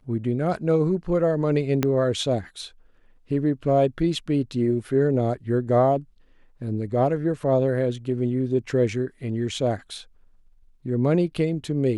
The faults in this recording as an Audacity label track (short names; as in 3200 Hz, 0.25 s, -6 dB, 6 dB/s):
1.830000	1.830000	pop -8 dBFS